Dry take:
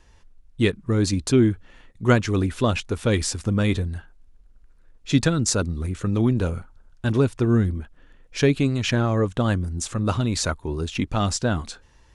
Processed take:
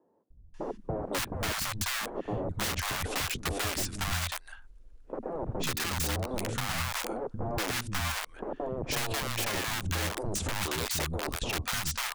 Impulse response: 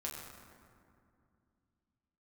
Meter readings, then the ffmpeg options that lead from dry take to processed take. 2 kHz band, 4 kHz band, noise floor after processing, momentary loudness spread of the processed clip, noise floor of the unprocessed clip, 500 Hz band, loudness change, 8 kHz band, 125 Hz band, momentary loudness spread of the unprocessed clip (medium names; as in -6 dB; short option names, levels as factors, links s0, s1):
-2.5 dB, -1.5 dB, -54 dBFS, 6 LU, -54 dBFS, -11.0 dB, -9.5 dB, -3.5 dB, -14.0 dB, 9 LU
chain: -filter_complex "[0:a]aeval=exprs='(mod(10.6*val(0)+1,2)-1)/10.6':c=same,acrossover=split=230|770[s0][s1][s2];[s0]adelay=300[s3];[s2]adelay=540[s4];[s3][s1][s4]amix=inputs=3:normalize=0,acompressor=threshold=0.0355:ratio=3"